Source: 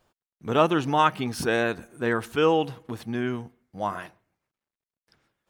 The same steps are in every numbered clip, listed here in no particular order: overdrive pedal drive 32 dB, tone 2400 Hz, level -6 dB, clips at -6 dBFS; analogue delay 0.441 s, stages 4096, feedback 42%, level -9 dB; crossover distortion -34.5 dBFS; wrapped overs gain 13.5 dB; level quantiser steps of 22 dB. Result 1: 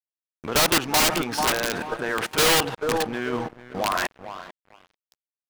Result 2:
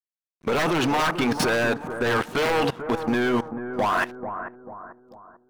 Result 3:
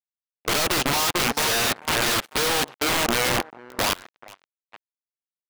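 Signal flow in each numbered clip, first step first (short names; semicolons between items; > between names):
level quantiser > overdrive pedal > analogue delay > wrapped overs > crossover distortion; wrapped overs > overdrive pedal > crossover distortion > level quantiser > analogue delay; analogue delay > crossover distortion > overdrive pedal > wrapped overs > level quantiser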